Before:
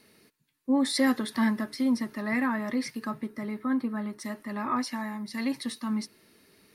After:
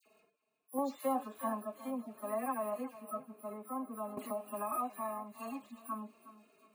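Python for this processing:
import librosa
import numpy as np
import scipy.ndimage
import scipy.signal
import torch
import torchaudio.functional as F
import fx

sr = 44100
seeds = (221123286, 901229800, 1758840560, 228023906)

p1 = fx.hpss_only(x, sr, part='harmonic')
p2 = fx.level_steps(p1, sr, step_db=21)
p3 = p1 + F.gain(torch.from_numpy(p2), -2.0).numpy()
p4 = fx.vowel_filter(p3, sr, vowel='a')
p5 = np.repeat(p4[::4], 4)[:len(p4)]
p6 = fx.dispersion(p5, sr, late='lows', ms=60.0, hz=2100.0)
p7 = 10.0 ** (-22.5 / 20.0) * np.tanh(p6 / 10.0 ** (-22.5 / 20.0))
p8 = fx.echo_feedback(p7, sr, ms=364, feedback_pct=26, wet_db=-16.0)
p9 = fx.band_squash(p8, sr, depth_pct=100, at=(4.17, 4.72))
y = F.gain(torch.from_numpy(p9), 7.0).numpy()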